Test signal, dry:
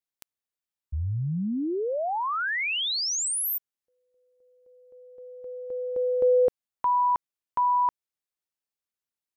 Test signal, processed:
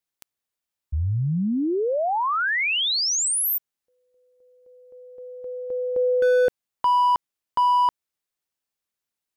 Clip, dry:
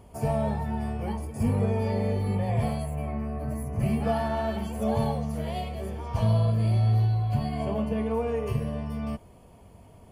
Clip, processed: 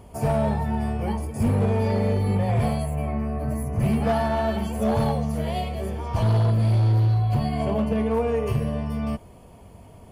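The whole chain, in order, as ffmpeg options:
ffmpeg -i in.wav -af "volume=21dB,asoftclip=hard,volume=-21dB,acontrast=21" out.wav

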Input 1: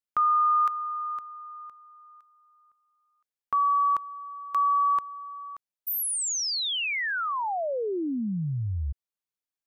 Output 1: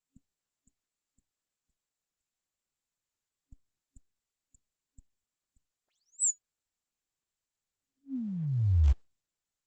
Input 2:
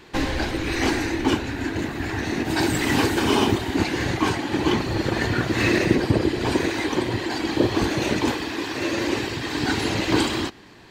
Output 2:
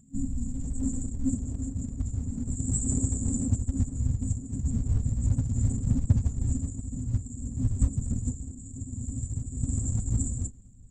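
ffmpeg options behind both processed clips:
ffmpeg -i in.wav -af "asubboost=boost=11.5:cutoff=59,afftfilt=real='re*(1-between(b*sr/4096,270,6900))':imag='im*(1-between(b*sr/4096,270,6900))':win_size=4096:overlap=0.75,lowshelf=frequency=210:gain=-8.5,acontrast=53,volume=-3dB" -ar 48000 -c:a libopus -b:a 10k out.opus

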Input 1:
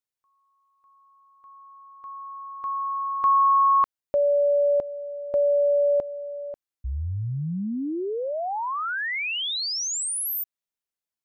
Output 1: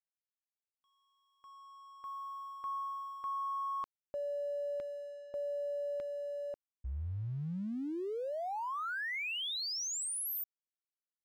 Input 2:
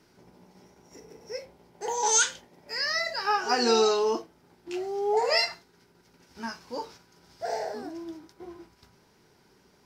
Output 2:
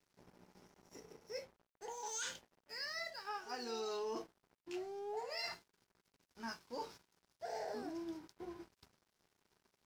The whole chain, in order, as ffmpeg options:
ffmpeg -i in.wav -af "areverse,acompressor=threshold=-31dB:ratio=16:attack=0.6:release=663:knee=6:detection=rms,areverse,aeval=exprs='sgn(val(0))*max(abs(val(0))-0.00126,0)':channel_layout=same,volume=-3.5dB" out.wav

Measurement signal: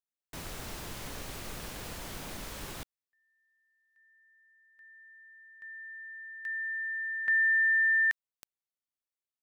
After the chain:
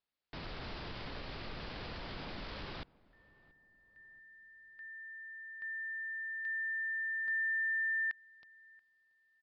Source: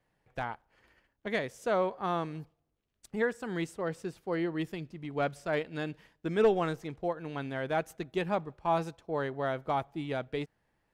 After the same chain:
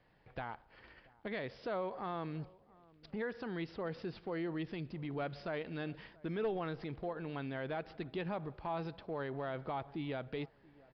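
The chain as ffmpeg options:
ffmpeg -i in.wav -filter_complex "[0:a]acompressor=threshold=-45dB:ratio=3:attack=0.11:release=61:knee=6:detection=rms,asplit=2[link_01][link_02];[link_02]adelay=681,lowpass=frequency=1300:poles=1,volume=-23dB,asplit=2[link_03][link_04];[link_04]adelay=681,lowpass=frequency=1300:poles=1,volume=0.41,asplit=2[link_05][link_06];[link_06]adelay=681,lowpass=frequency=1300:poles=1,volume=0.41[link_07];[link_03][link_05][link_07]amix=inputs=3:normalize=0[link_08];[link_01][link_08]amix=inputs=2:normalize=0,aresample=11025,aresample=44100,volume=6.5dB" out.wav

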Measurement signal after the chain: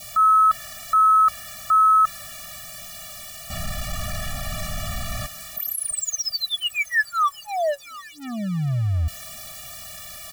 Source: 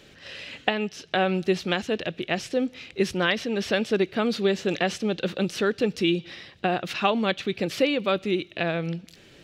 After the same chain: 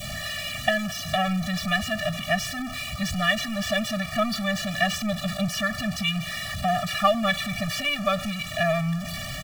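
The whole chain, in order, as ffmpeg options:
ffmpeg -i in.wav -af "aeval=exprs='val(0)+0.5*0.0501*sgn(val(0))':channel_layout=same,aecho=1:1:1.8:0.65,adynamicequalizer=threshold=0.0158:dfrequency=1500:dqfactor=2:tfrequency=1500:tqfactor=2:attack=5:release=100:ratio=0.375:range=3.5:mode=boostabove:tftype=bell,afftfilt=real='re*eq(mod(floor(b*sr/1024/280),2),0)':imag='im*eq(mod(floor(b*sr/1024/280),2),0)':win_size=1024:overlap=0.75" out.wav

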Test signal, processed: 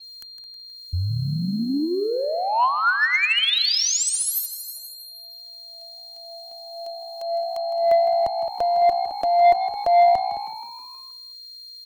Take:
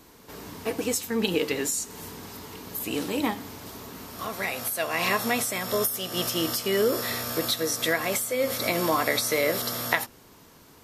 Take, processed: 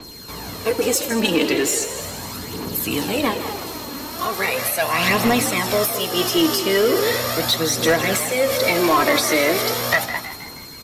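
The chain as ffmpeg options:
ffmpeg -i in.wav -filter_complex "[0:a]acrossover=split=130|3400[link_01][link_02][link_03];[link_03]acompressor=mode=upward:threshold=-47dB:ratio=2.5[link_04];[link_01][link_02][link_04]amix=inputs=3:normalize=0,asplit=2[link_05][link_06];[link_06]adelay=215.7,volume=-13dB,highshelf=frequency=4000:gain=-4.85[link_07];[link_05][link_07]amix=inputs=2:normalize=0,aphaser=in_gain=1:out_gain=1:delay=3.6:decay=0.52:speed=0.38:type=triangular,asoftclip=type=tanh:threshold=-17.5dB,aeval=exprs='val(0)+0.00447*sin(2*PI*4200*n/s)':channel_layout=same,asplit=2[link_08][link_09];[link_09]asplit=6[link_10][link_11][link_12][link_13][link_14][link_15];[link_10]adelay=159,afreqshift=60,volume=-11.5dB[link_16];[link_11]adelay=318,afreqshift=120,volume=-16.7dB[link_17];[link_12]adelay=477,afreqshift=180,volume=-21.9dB[link_18];[link_13]adelay=636,afreqshift=240,volume=-27.1dB[link_19];[link_14]adelay=795,afreqshift=300,volume=-32.3dB[link_20];[link_15]adelay=954,afreqshift=360,volume=-37.5dB[link_21];[link_16][link_17][link_18][link_19][link_20][link_21]amix=inputs=6:normalize=0[link_22];[link_08][link_22]amix=inputs=2:normalize=0,adynamicequalizer=threshold=0.01:dfrequency=7100:dqfactor=0.7:tfrequency=7100:tqfactor=0.7:attack=5:release=100:ratio=0.375:range=2.5:mode=cutabove:tftype=highshelf,volume=8dB" out.wav

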